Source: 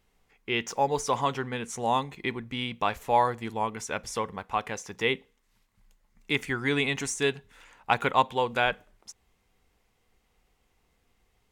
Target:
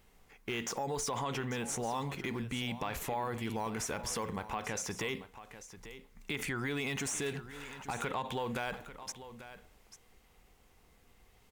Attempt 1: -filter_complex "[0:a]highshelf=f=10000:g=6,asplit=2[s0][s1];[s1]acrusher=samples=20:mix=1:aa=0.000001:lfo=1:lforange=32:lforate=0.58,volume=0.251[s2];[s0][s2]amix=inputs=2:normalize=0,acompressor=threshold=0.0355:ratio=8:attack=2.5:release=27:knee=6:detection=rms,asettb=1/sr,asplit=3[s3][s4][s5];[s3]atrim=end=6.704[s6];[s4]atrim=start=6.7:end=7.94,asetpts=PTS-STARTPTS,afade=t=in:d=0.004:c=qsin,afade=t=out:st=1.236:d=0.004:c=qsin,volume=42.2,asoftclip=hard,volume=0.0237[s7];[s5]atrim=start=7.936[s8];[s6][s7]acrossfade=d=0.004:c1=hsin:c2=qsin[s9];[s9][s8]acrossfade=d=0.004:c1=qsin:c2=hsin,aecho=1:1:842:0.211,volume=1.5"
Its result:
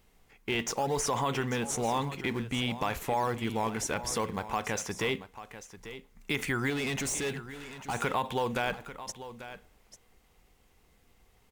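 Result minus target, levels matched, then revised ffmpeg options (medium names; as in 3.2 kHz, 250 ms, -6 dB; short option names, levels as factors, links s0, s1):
compression: peak gain reduction -6.5 dB; decimation with a swept rate: distortion +8 dB
-filter_complex "[0:a]highshelf=f=10000:g=6,asplit=2[s0][s1];[s1]acrusher=samples=6:mix=1:aa=0.000001:lfo=1:lforange=9.6:lforate=0.58,volume=0.251[s2];[s0][s2]amix=inputs=2:normalize=0,acompressor=threshold=0.015:ratio=8:attack=2.5:release=27:knee=6:detection=rms,asettb=1/sr,asplit=3[s3][s4][s5];[s3]atrim=end=6.704[s6];[s4]atrim=start=6.7:end=7.94,asetpts=PTS-STARTPTS,afade=t=in:d=0.004:c=qsin,afade=t=out:st=1.236:d=0.004:c=qsin,volume=42.2,asoftclip=hard,volume=0.0237[s7];[s5]atrim=start=7.936[s8];[s6][s7]acrossfade=d=0.004:c1=hsin:c2=qsin[s9];[s9][s8]acrossfade=d=0.004:c1=qsin:c2=hsin,aecho=1:1:842:0.211,volume=1.5"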